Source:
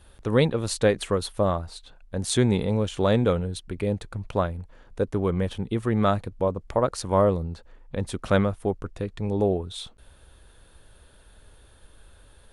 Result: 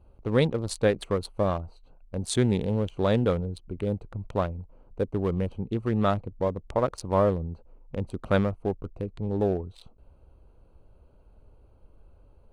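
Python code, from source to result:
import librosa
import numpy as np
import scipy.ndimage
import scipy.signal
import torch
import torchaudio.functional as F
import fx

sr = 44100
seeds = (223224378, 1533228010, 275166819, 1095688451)

y = fx.wiener(x, sr, points=25)
y = y * librosa.db_to_amplitude(-2.0)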